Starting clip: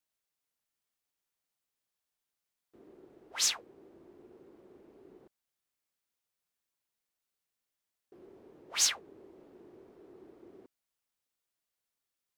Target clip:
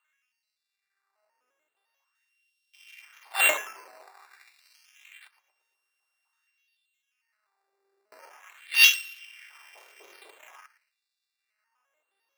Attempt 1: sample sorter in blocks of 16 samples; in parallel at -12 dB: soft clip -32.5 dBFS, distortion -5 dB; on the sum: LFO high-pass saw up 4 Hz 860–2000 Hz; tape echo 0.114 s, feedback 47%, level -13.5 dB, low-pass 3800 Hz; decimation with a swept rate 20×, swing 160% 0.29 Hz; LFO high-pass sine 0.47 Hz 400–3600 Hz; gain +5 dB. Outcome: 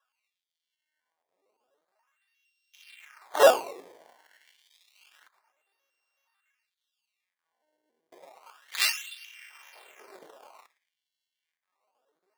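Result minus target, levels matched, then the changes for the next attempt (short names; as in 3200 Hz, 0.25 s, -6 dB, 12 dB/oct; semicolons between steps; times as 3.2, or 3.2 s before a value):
decimation with a swept rate: distortion +17 dB
change: decimation with a swept rate 8×, swing 160% 0.29 Hz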